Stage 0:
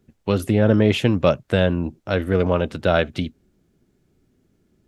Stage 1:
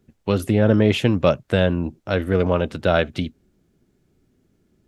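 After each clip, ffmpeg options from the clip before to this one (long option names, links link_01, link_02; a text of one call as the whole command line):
ffmpeg -i in.wav -af anull out.wav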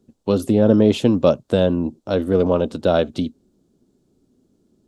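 ffmpeg -i in.wav -af "equalizer=frequency=250:width_type=o:width=1:gain=9,equalizer=frequency=500:width_type=o:width=1:gain=6,equalizer=frequency=1000:width_type=o:width=1:gain=5,equalizer=frequency=2000:width_type=o:width=1:gain=-9,equalizer=frequency=4000:width_type=o:width=1:gain=6,equalizer=frequency=8000:width_type=o:width=1:gain=7,volume=-5dB" out.wav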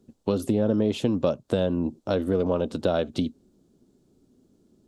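ffmpeg -i in.wav -af "acompressor=threshold=-22dB:ratio=3" out.wav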